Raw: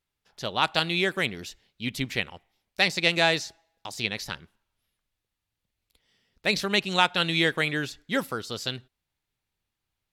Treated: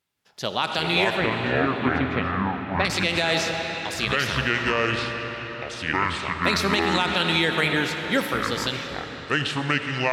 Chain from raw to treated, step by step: high-pass 110 Hz; ever faster or slower copies 172 ms, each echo -6 st, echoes 2; 1.17–2.85 s: low-pass 1.7 kHz 12 dB/octave; reverberation RT60 5.2 s, pre-delay 20 ms, DRR 6.5 dB; peak limiter -15 dBFS, peak gain reduction 9 dB; trim +4.5 dB

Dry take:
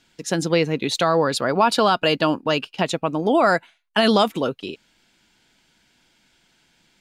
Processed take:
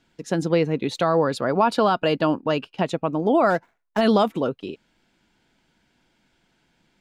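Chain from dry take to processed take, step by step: 3.50–4.01 s: median filter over 15 samples; treble shelf 2 kHz -11 dB

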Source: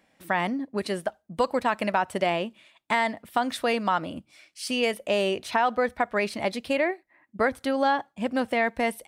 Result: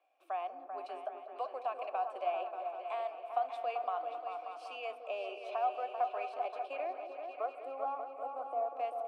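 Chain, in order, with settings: steep high-pass 290 Hz 72 dB/octave; treble shelf 8.5 kHz +5 dB; in parallel at +1 dB: compression, threshold -36 dBFS, peak gain reduction 16 dB; on the sum: vowel filter a; time-frequency box 7.15–8.70 s, 1.5–7.3 kHz -18 dB; delay with an opening low-pass 195 ms, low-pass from 400 Hz, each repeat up 2 oct, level -3 dB; on a send at -14 dB: reverberation RT60 2.6 s, pre-delay 6 ms; on the sum: trim -7 dB

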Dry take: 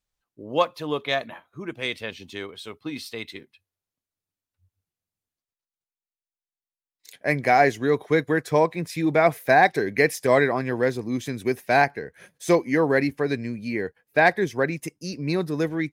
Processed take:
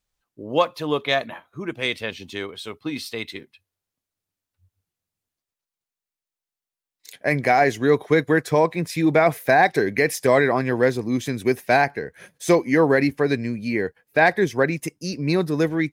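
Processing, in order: peak limiter -10.5 dBFS, peak gain reduction 5 dB; trim +4 dB

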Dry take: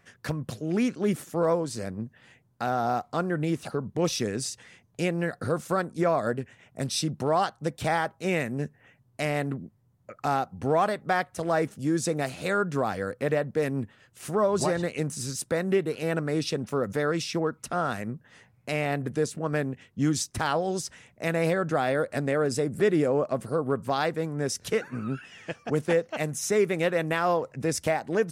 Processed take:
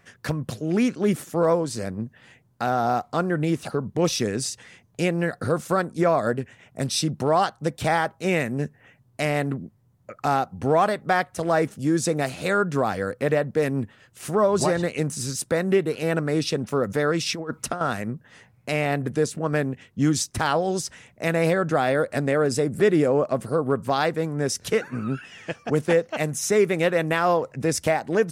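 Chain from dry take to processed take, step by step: 17.26–17.81 s: compressor with a negative ratio -31 dBFS, ratio -0.5; trim +4 dB

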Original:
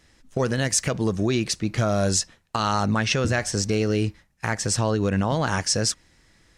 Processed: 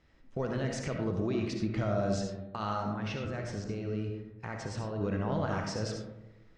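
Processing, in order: low-pass 4.8 kHz 12 dB/octave; band-stop 1.7 kHz, Q 23; de-hum 115.7 Hz, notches 40; peak limiter -18 dBFS, peak gain reduction 7 dB; treble shelf 3.2 kHz -11 dB; 2.78–5.01 s: compression, threshold -28 dBFS, peak gain reduction 6.5 dB; algorithmic reverb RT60 1 s, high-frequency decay 0.3×, pre-delay 30 ms, DRR 2.5 dB; trim -6 dB

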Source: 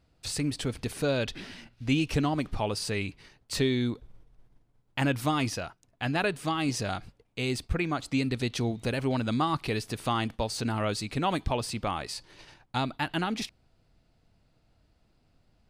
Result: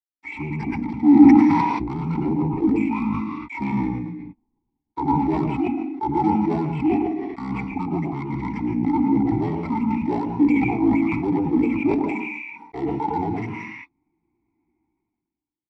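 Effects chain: expander on every frequency bin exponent 1.5; inverse Chebyshev low-pass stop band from 8.4 kHz, stop band 40 dB; treble shelf 2.1 kHz +7 dB; waveshaping leveller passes 5; pitch shift -11.5 st; vowel filter u; reverberation RT60 0.45 s, pre-delay 105 ms, DRR 2.5 dB; decay stretcher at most 31 dB/s; trim -2 dB

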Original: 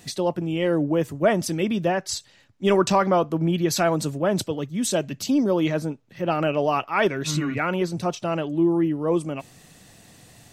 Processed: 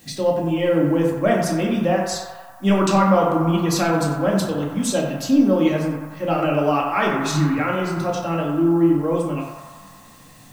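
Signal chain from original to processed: added noise blue -56 dBFS; on a send: band-passed feedback delay 93 ms, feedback 80%, band-pass 1.1 kHz, level -5.5 dB; on the sum: simulated room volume 430 m³, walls furnished, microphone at 2.2 m; trim -2 dB

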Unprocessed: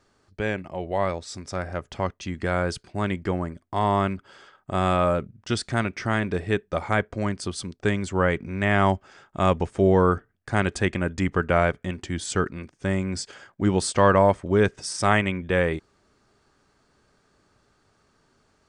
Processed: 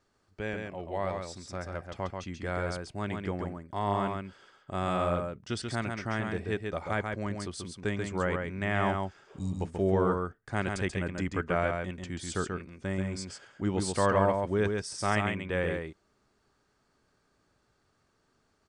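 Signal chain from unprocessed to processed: spectral replace 9.31–9.52 s, 360–3700 Hz after; delay 136 ms -4.5 dB; trim -8.5 dB

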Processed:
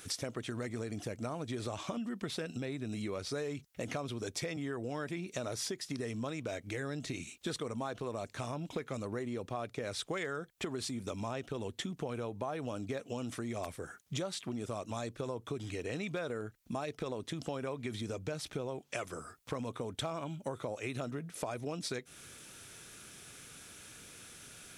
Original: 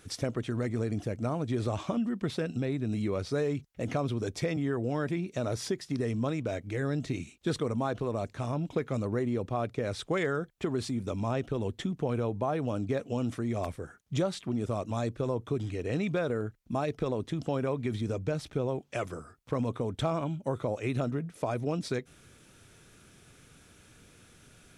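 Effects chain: tilt EQ +2 dB/octave; compression 3:1, threshold -41 dBFS, peak gain reduction 11 dB; trim +3.5 dB

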